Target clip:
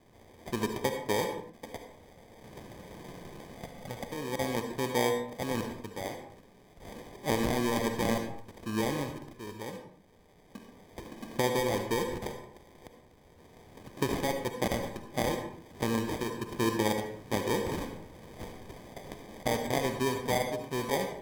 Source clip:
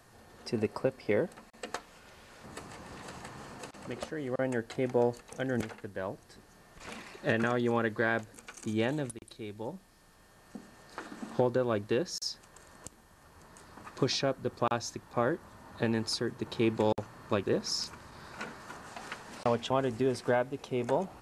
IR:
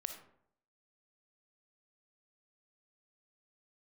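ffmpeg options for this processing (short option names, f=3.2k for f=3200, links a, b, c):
-filter_complex "[0:a]asettb=1/sr,asplit=3[a][b][c];[a]atrim=end=3.564[d];[b]atrim=start=3.56:end=4.01,asetpts=PTS-STARTPTS,afade=t=in:d=0.004:c=qsin,afade=t=out:st=0.446:d=0.004:c=qsin,aecho=1:1:1.5:0.65,atrim=end_sample=19845[e];[c]atrim=start=4.006[f];[d][e]acrossfade=d=0.004:c1=hsin:c2=qsin[g];[g][f]acrossfade=d=0.004:c1=qsin:c2=hsin,acrusher=samples=32:mix=1:aa=0.000001[h];[1:a]atrim=start_sample=2205,afade=t=out:st=0.28:d=0.01,atrim=end_sample=12789,asetrate=34398,aresample=44100[i];[h][i]afir=irnorm=-1:irlink=0"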